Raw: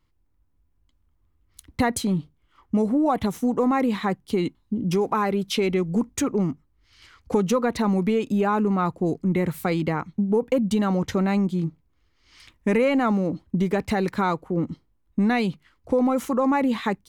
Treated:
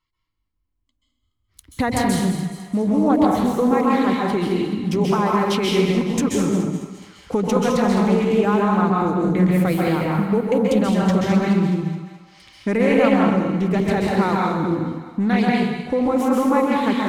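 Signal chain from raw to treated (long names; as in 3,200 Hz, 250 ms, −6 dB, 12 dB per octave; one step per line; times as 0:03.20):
noise reduction from a noise print of the clip's start 13 dB
echo with a time of its own for lows and highs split 680 Hz, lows 87 ms, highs 211 ms, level −11 dB
dense smooth reverb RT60 0.86 s, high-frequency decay 0.95×, pre-delay 120 ms, DRR −2.5 dB
highs frequency-modulated by the lows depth 0.18 ms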